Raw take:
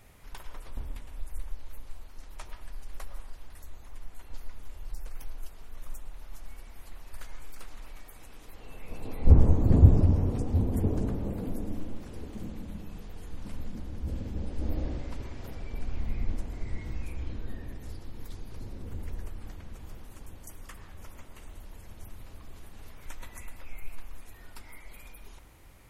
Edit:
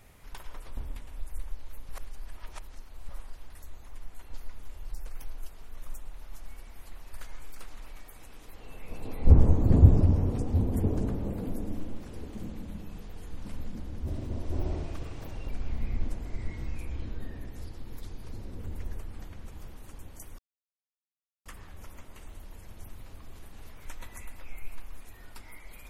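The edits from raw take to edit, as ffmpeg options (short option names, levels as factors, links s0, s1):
-filter_complex "[0:a]asplit=6[s0][s1][s2][s3][s4][s5];[s0]atrim=end=1.892[s6];[s1]atrim=start=1.888:end=3.092,asetpts=PTS-STARTPTS,areverse[s7];[s2]atrim=start=3.088:end=14.054[s8];[s3]atrim=start=14.05:end=15.77,asetpts=PTS-STARTPTS,asetrate=52479,aresample=44100,atrim=end_sample=63741,asetpts=PTS-STARTPTS[s9];[s4]atrim=start=15.766:end=20.66,asetpts=PTS-STARTPTS,afade=t=out:st=4.89:d=0.004:c=hsin,apad=pad_dur=1.07[s10];[s5]atrim=start=20.66,asetpts=PTS-STARTPTS,afade=t=in:d=0.004:c=hsin[s11];[s6][s7]acrossfade=d=0.004:c1=hsin:c2=hsin[s12];[s12][s8]acrossfade=d=0.004:c1=hsin:c2=hsin[s13];[s13][s9]acrossfade=d=0.004:c1=hsin:c2=hsin[s14];[s10][s11]concat=n=2:v=0:a=1[s15];[s14][s15]acrossfade=d=0.004:c1=hsin:c2=hsin"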